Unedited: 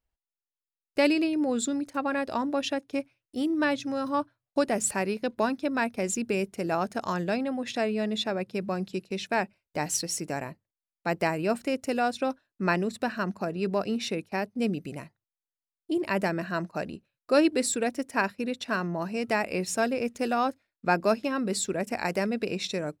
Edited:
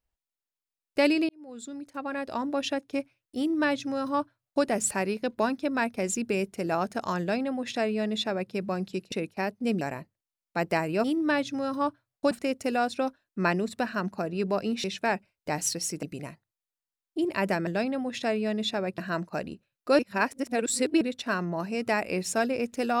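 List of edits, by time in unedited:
1.29–2.69 s: fade in
3.37–4.64 s: copy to 11.54 s
7.20–8.51 s: copy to 16.40 s
9.12–10.31 s: swap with 14.07–14.76 s
17.41–18.43 s: reverse

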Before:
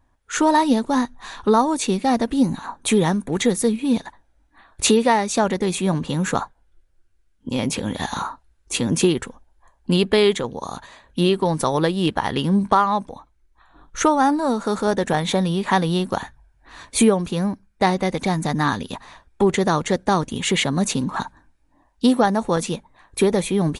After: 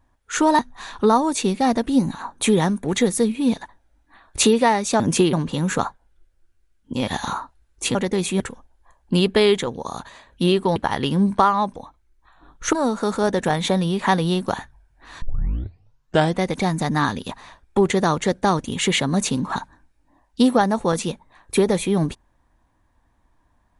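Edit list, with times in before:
0.59–1.03 s: delete
5.44–5.89 s: swap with 8.84–9.17 s
7.63–7.96 s: delete
11.53–12.09 s: delete
14.06–14.37 s: delete
16.86 s: tape start 1.19 s

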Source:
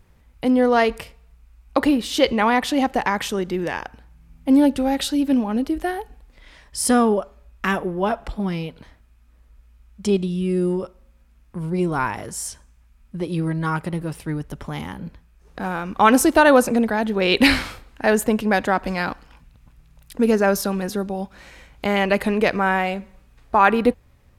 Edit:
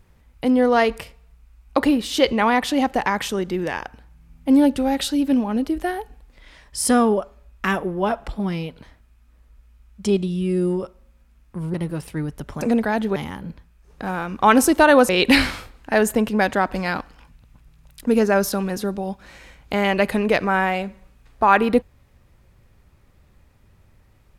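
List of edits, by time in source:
11.74–13.86 s: delete
16.66–17.21 s: move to 14.73 s

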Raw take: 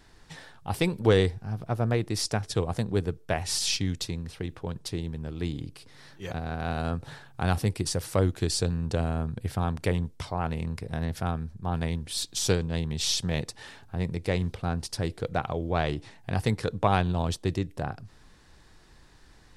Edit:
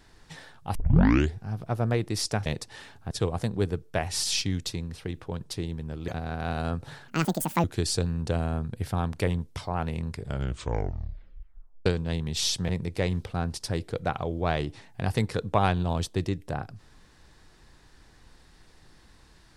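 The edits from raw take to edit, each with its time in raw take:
0.75 s: tape start 0.60 s
5.43–6.28 s: delete
7.28–8.28 s: speed 179%
10.74 s: tape stop 1.76 s
13.33–13.98 s: move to 2.46 s

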